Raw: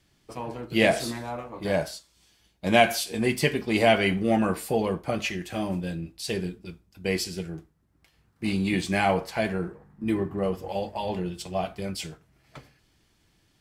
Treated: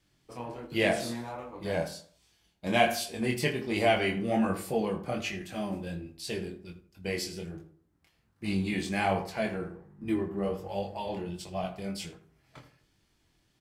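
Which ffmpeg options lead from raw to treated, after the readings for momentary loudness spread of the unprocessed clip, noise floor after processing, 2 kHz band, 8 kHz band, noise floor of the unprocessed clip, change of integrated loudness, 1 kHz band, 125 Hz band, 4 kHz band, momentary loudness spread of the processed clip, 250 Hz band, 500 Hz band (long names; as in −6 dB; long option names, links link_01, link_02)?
14 LU, −71 dBFS, −5.0 dB, −5.0 dB, −67 dBFS, −4.5 dB, −4.5 dB, −5.0 dB, −5.0 dB, 15 LU, −4.5 dB, −5.0 dB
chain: -filter_complex "[0:a]asplit=2[link_01][link_02];[link_02]adelay=81,lowpass=frequency=1600:poles=1,volume=-11dB,asplit=2[link_03][link_04];[link_04]adelay=81,lowpass=frequency=1600:poles=1,volume=0.4,asplit=2[link_05][link_06];[link_06]adelay=81,lowpass=frequency=1600:poles=1,volume=0.4,asplit=2[link_07][link_08];[link_08]adelay=81,lowpass=frequency=1600:poles=1,volume=0.4[link_09];[link_01][link_03][link_05][link_07][link_09]amix=inputs=5:normalize=0,flanger=delay=20:depth=5.2:speed=1.3,volume=-2dB"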